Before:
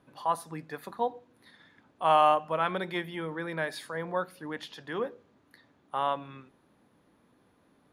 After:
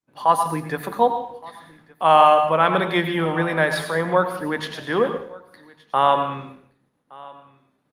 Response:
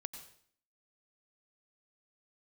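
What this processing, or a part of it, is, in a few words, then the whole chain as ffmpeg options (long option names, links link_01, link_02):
far-field microphone of a smart speaker: -filter_complex "[0:a]agate=range=-33dB:threshold=-53dB:ratio=3:detection=peak,adynamicequalizer=threshold=0.00224:dfrequency=8800:dqfactor=1.2:tfrequency=8800:tqfactor=1.2:attack=5:release=100:ratio=0.375:range=1.5:mode=cutabove:tftype=bell,aecho=1:1:1169:0.0668[link_01];[1:a]atrim=start_sample=2205[link_02];[link_01][link_02]afir=irnorm=-1:irlink=0,highpass=frequency=84:width=0.5412,highpass=frequency=84:width=1.3066,dynaudnorm=framelen=110:gausssize=3:maxgain=16dB" -ar 48000 -c:a libopus -b:a 32k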